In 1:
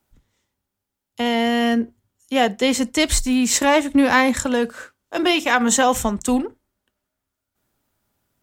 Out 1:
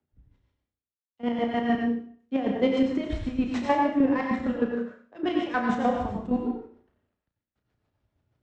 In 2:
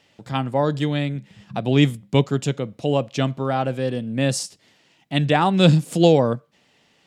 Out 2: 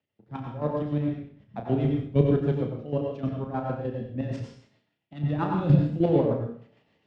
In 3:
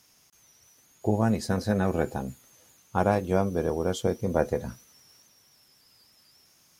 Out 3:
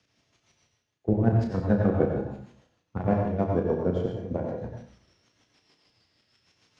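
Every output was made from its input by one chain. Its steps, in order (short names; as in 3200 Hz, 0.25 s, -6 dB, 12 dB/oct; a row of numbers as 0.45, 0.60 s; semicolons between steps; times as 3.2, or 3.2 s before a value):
CVSD 64 kbps; HPF 46 Hz; reverse; upward compressor, threshold -36 dBFS; reverse; chopper 6.5 Hz, depth 65%, duty 35%; rotary speaker horn 7.5 Hz; tape spacing loss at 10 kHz 37 dB; on a send: flutter echo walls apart 5.8 m, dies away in 0.26 s; on the sum: plate-style reverb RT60 0.55 s, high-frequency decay 1×, pre-delay 80 ms, DRR 1 dB; three-band expander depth 40%; match loudness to -27 LUFS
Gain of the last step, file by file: -2.0, -2.5, +4.0 dB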